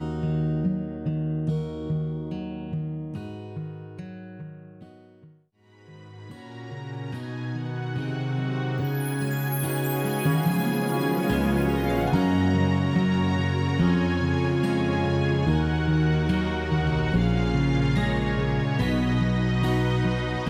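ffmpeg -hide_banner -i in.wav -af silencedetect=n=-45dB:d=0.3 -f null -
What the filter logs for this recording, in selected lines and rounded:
silence_start: 5.28
silence_end: 5.79 | silence_duration: 0.51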